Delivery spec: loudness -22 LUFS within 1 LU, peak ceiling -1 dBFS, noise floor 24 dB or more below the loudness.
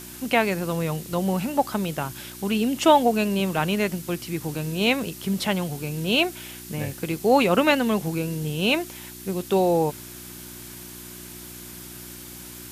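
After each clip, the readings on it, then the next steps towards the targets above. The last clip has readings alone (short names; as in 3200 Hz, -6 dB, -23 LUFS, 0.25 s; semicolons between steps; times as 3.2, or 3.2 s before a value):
hum 60 Hz; harmonics up to 360 Hz; hum level -45 dBFS; noise floor -41 dBFS; noise floor target -48 dBFS; loudness -23.5 LUFS; peak -3.5 dBFS; loudness target -22.0 LUFS
-> de-hum 60 Hz, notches 6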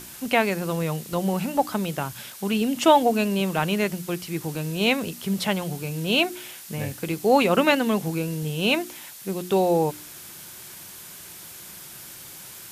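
hum none; noise floor -42 dBFS; noise floor target -48 dBFS
-> noise print and reduce 6 dB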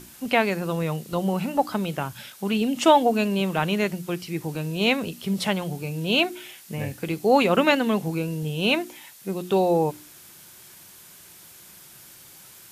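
noise floor -48 dBFS; loudness -24.0 LUFS; peak -3.5 dBFS; loudness target -22.0 LUFS
-> gain +2 dB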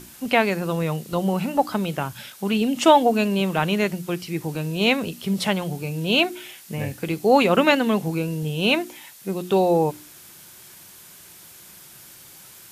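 loudness -22.0 LUFS; peak -1.5 dBFS; noise floor -46 dBFS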